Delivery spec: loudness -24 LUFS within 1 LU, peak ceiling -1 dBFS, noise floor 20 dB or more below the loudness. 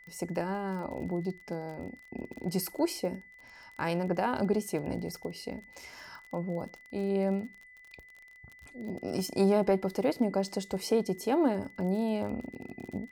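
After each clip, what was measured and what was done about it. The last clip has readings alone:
tick rate 29 per s; steady tone 2 kHz; tone level -52 dBFS; loudness -32.0 LUFS; peak level -14.0 dBFS; loudness target -24.0 LUFS
-> de-click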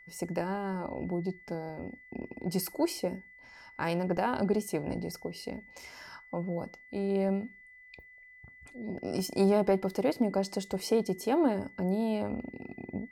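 tick rate 0.23 per s; steady tone 2 kHz; tone level -52 dBFS
-> band-stop 2 kHz, Q 30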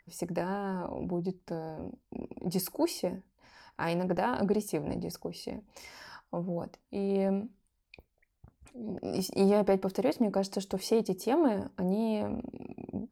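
steady tone not found; loudness -32.0 LUFS; peak level -14.0 dBFS; loudness target -24.0 LUFS
-> trim +8 dB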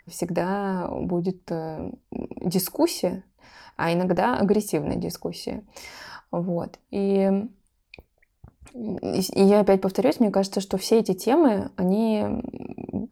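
loudness -24.0 LUFS; peak level -6.0 dBFS; noise floor -69 dBFS

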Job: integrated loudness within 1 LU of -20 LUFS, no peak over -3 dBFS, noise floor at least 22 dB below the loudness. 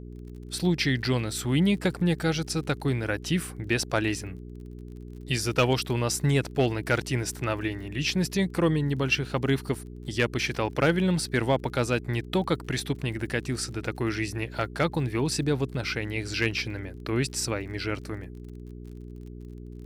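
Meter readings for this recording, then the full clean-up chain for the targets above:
tick rate 38 per s; hum 60 Hz; highest harmonic 420 Hz; hum level -39 dBFS; loudness -27.5 LUFS; peak level -12.0 dBFS; loudness target -20.0 LUFS
-> de-click; de-hum 60 Hz, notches 7; trim +7.5 dB

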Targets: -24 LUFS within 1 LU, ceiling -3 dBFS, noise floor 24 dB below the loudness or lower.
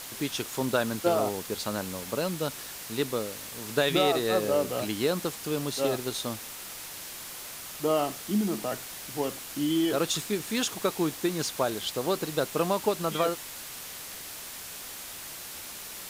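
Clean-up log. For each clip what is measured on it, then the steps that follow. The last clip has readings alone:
noise floor -41 dBFS; noise floor target -54 dBFS; loudness -30.0 LUFS; peak level -11.5 dBFS; loudness target -24.0 LUFS
-> noise reduction 13 dB, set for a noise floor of -41 dBFS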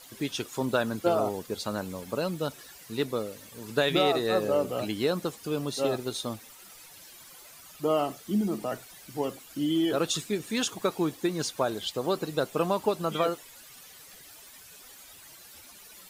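noise floor -50 dBFS; noise floor target -54 dBFS
-> noise reduction 6 dB, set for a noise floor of -50 dBFS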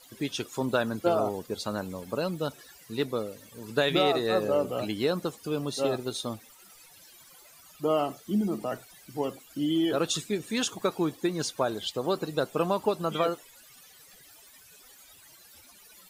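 noise floor -54 dBFS; loudness -29.5 LUFS; peak level -12.0 dBFS; loudness target -24.0 LUFS
-> trim +5.5 dB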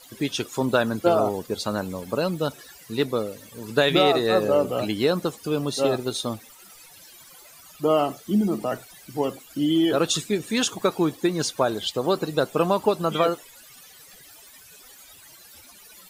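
loudness -24.0 LUFS; peak level -6.5 dBFS; noise floor -49 dBFS

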